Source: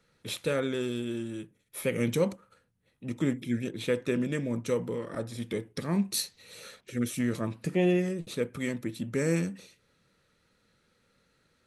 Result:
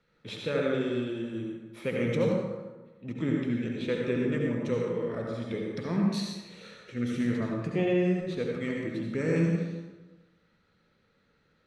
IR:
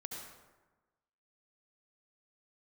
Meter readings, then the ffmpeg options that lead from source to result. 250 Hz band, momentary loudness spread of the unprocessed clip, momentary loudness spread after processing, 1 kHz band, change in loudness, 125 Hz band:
+1.5 dB, 11 LU, 14 LU, +1.0 dB, +1.0 dB, +1.5 dB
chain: -filter_complex "[0:a]lowpass=4000[s0];[1:a]atrim=start_sample=2205[s1];[s0][s1]afir=irnorm=-1:irlink=0,volume=1.33"

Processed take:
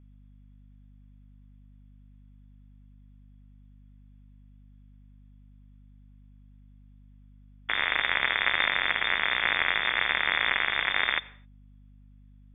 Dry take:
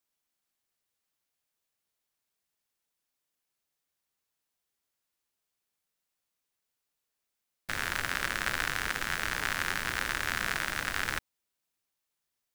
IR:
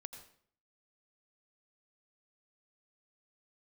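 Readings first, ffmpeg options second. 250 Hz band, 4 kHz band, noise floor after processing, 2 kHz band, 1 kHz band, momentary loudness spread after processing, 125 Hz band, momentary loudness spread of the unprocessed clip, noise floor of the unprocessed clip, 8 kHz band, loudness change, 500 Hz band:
-1.5 dB, +8.0 dB, -53 dBFS, +6.5 dB, +4.5 dB, 4 LU, -2.0 dB, 4 LU, -85 dBFS, under -40 dB, +6.5 dB, +4.0 dB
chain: -filter_complex "[0:a]equalizer=f=125:t=o:w=1:g=-5,equalizer=f=250:t=o:w=1:g=8,equalizer=f=500:t=o:w=1:g=-9,lowpass=f=3100:t=q:w=0.5098,lowpass=f=3100:t=q:w=0.6013,lowpass=f=3100:t=q:w=0.9,lowpass=f=3100:t=q:w=2.563,afreqshift=-3600,asplit=2[s0][s1];[1:a]atrim=start_sample=2205,afade=t=out:st=0.32:d=0.01,atrim=end_sample=14553[s2];[s1][s2]afir=irnorm=-1:irlink=0,volume=0.473[s3];[s0][s3]amix=inputs=2:normalize=0,aeval=exprs='val(0)+0.00141*(sin(2*PI*50*n/s)+sin(2*PI*2*50*n/s)/2+sin(2*PI*3*50*n/s)/3+sin(2*PI*4*50*n/s)/4+sin(2*PI*5*50*n/s)/5)':c=same,volume=1.78"

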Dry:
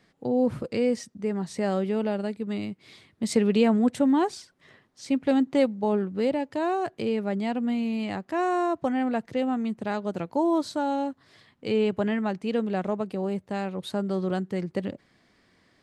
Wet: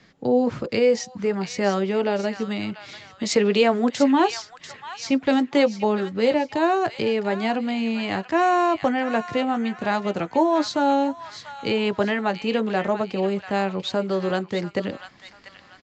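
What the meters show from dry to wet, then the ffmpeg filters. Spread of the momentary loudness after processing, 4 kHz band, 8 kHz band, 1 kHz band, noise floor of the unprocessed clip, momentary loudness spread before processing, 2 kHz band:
10 LU, +9.5 dB, +6.5 dB, +7.0 dB, -65 dBFS, 9 LU, +9.0 dB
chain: -filter_complex "[0:a]acrossover=split=290|940[s0][s1][s2];[s0]acompressor=threshold=0.0112:ratio=6[s3];[s1]flanger=delay=15:depth=3.3:speed=0.59[s4];[s2]aecho=1:1:691|1382|2073|2764:0.335|0.121|0.0434|0.0156[s5];[s3][s4][s5]amix=inputs=3:normalize=0,aresample=16000,aresample=44100,volume=2.82"

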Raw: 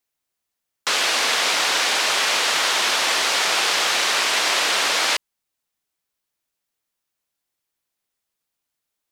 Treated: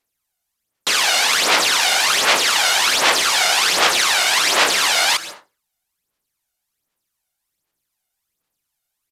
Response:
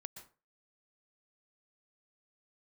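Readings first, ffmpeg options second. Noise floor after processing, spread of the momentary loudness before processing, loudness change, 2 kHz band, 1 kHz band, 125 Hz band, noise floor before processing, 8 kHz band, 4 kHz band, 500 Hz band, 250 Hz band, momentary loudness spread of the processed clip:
-78 dBFS, 2 LU, +3.5 dB, +3.5 dB, +4.0 dB, no reading, -81 dBFS, +4.5 dB, +3.5 dB, +3.5 dB, +4.0 dB, 3 LU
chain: -filter_complex "[0:a]asplit=2[s0][s1];[1:a]atrim=start_sample=2205,asetrate=39690,aresample=44100,highshelf=f=7400:g=9.5[s2];[s1][s2]afir=irnorm=-1:irlink=0,volume=1.33[s3];[s0][s3]amix=inputs=2:normalize=0,acrusher=bits=5:mode=log:mix=0:aa=0.000001,aphaser=in_gain=1:out_gain=1:delay=1.4:decay=0.6:speed=1.3:type=sinusoidal,aresample=32000,aresample=44100,volume=0.631"

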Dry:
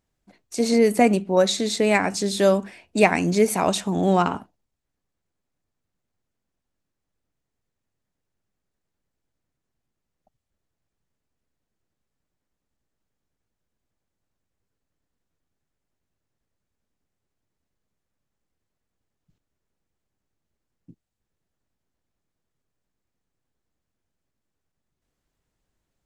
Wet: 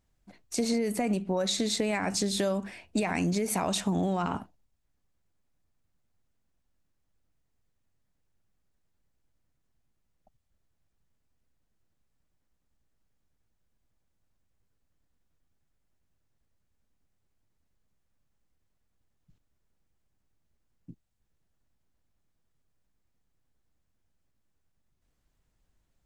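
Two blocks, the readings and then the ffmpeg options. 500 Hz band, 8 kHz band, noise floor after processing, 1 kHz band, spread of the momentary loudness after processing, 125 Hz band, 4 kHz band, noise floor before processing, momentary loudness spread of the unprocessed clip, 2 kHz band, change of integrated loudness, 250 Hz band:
-11.5 dB, -3.5 dB, -76 dBFS, -10.0 dB, 6 LU, -5.5 dB, -4.5 dB, -82 dBFS, 8 LU, -10.5 dB, -8.5 dB, -7.0 dB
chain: -af "alimiter=limit=0.237:level=0:latency=1:release=32,lowshelf=f=90:g=8,acompressor=threshold=0.0631:ratio=6,equalizer=f=400:t=o:w=0.77:g=-2.5"

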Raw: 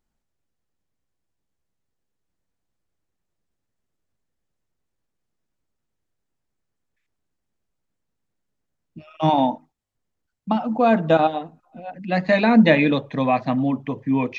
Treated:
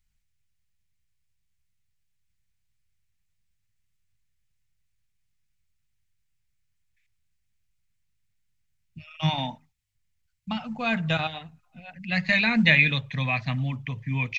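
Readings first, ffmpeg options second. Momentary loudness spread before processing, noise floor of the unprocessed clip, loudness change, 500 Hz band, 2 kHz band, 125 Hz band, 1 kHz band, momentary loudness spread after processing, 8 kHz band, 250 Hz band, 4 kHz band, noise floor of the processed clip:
16 LU, -79 dBFS, -5.0 dB, -15.5 dB, +3.0 dB, 0.0 dB, -12.0 dB, 16 LU, no reading, -9.5 dB, +4.0 dB, -74 dBFS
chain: -af "firequalizer=gain_entry='entry(110,0);entry(300,-25);entry(2200,1);entry(3200,-2)':delay=0.05:min_phase=1,volume=1.88"

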